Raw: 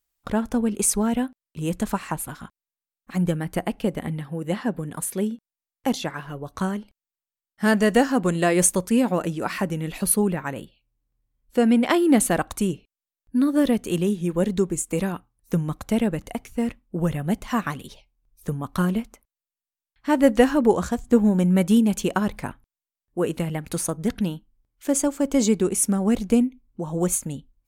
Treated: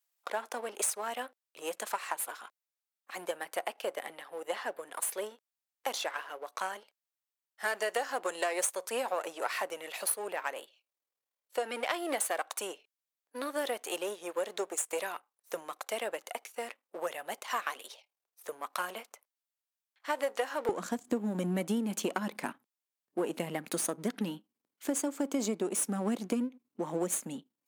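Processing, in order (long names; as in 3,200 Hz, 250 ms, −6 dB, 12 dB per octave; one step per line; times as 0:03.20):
gain on one half-wave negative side −7 dB
high-pass filter 500 Hz 24 dB per octave, from 0:20.69 220 Hz
downward compressor 8 to 1, threshold −28 dBFS, peak gain reduction 13.5 dB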